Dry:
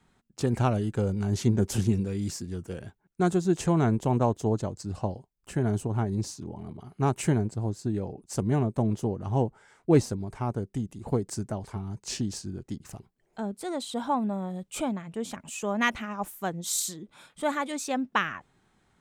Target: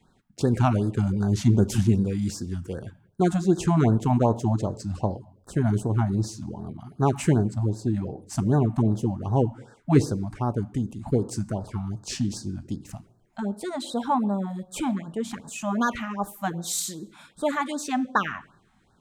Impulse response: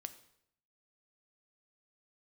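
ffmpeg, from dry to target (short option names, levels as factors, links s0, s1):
-filter_complex "[0:a]asplit=2[s0][s1];[1:a]atrim=start_sample=2205,afade=t=out:st=0.39:d=0.01,atrim=end_sample=17640,highshelf=f=5100:g=-10.5[s2];[s1][s2]afir=irnorm=-1:irlink=0,volume=2.24[s3];[s0][s3]amix=inputs=2:normalize=0,afftfilt=real='re*(1-between(b*sr/1024,390*pow(2600/390,0.5+0.5*sin(2*PI*2.6*pts/sr))/1.41,390*pow(2600/390,0.5+0.5*sin(2*PI*2.6*pts/sr))*1.41))':imag='im*(1-between(b*sr/1024,390*pow(2600/390,0.5+0.5*sin(2*PI*2.6*pts/sr))/1.41,390*pow(2600/390,0.5+0.5*sin(2*PI*2.6*pts/sr))*1.41))':win_size=1024:overlap=0.75,volume=0.668"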